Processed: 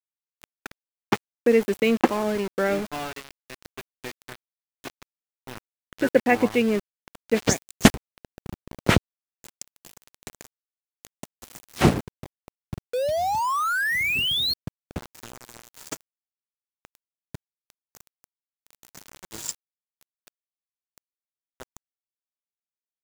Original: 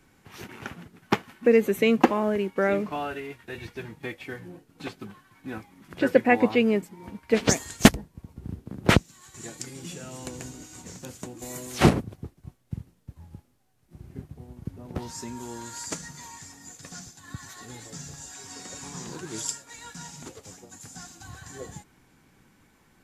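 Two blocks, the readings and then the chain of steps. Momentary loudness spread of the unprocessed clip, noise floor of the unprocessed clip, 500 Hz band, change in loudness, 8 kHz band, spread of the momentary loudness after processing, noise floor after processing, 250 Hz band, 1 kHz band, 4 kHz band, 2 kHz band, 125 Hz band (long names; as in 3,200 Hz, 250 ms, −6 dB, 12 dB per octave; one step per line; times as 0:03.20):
22 LU, −62 dBFS, +0.5 dB, +2.5 dB, −1.0 dB, 22 LU, below −85 dBFS, −0.5 dB, +2.5 dB, +5.5 dB, +3.0 dB, −0.5 dB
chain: sound drawn into the spectrogram rise, 0:12.93–0:14.54, 480–4,400 Hz −24 dBFS
centre clipping without the shift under −30 dBFS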